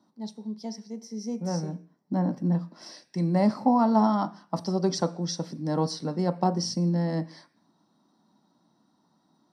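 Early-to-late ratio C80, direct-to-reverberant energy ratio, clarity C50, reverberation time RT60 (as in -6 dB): 22.5 dB, 10.5 dB, 18.5 dB, 0.45 s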